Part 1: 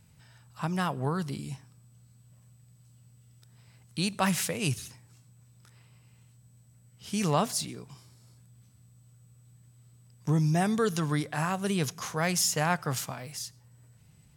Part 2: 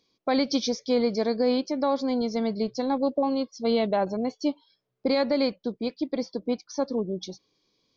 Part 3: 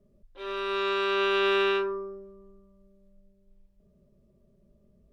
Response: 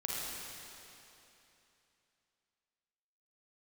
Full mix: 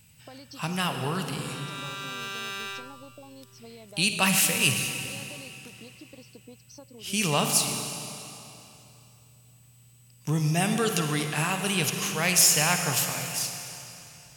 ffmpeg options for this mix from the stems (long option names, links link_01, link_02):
-filter_complex "[0:a]equalizer=frequency=2700:width=2.5:gain=11,volume=-4.5dB,asplit=2[link_01][link_02];[link_02]volume=-3.5dB[link_03];[1:a]acompressor=threshold=-30dB:ratio=6,volume=-15dB[link_04];[2:a]highpass=890,aeval=exprs='clip(val(0),-1,0.0376)':channel_layout=same,adelay=1000,volume=-8.5dB,asplit=2[link_05][link_06];[link_06]volume=-14dB[link_07];[3:a]atrim=start_sample=2205[link_08];[link_03][link_07]amix=inputs=2:normalize=0[link_09];[link_09][link_08]afir=irnorm=-1:irlink=0[link_10];[link_01][link_04][link_05][link_10]amix=inputs=4:normalize=0,crystalizer=i=2:c=0"